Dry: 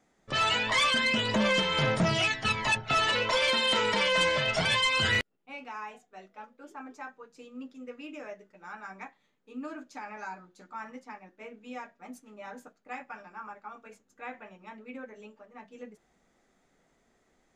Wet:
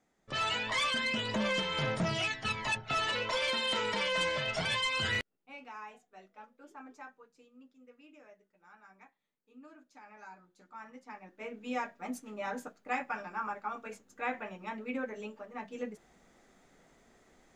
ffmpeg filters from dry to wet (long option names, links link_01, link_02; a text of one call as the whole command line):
ffmpeg -i in.wav -af "volume=15dB,afade=type=out:start_time=6.99:duration=0.53:silence=0.354813,afade=type=in:start_time=9.83:duration=1.16:silence=0.375837,afade=type=in:start_time=10.99:duration=0.82:silence=0.237137" out.wav